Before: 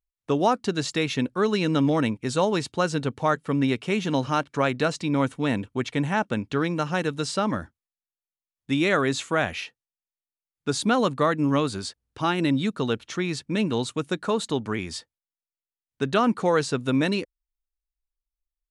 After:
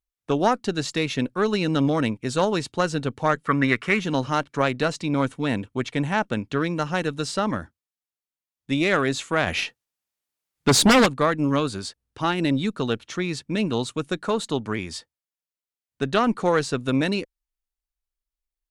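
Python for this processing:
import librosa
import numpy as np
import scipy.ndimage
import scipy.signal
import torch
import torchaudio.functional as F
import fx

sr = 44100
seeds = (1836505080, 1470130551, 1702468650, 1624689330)

y = fx.fold_sine(x, sr, drive_db=fx.line((9.46, 3.0), (11.05, 9.0)), ceiling_db=-11.0, at=(9.46, 11.05), fade=0.02)
y = fx.cheby_harmonics(y, sr, harmonics=(2,), levels_db=(-12,), full_scale_db=-8.5)
y = fx.band_shelf(y, sr, hz=1500.0, db=14.0, octaves=1.2, at=(3.47, 4.0))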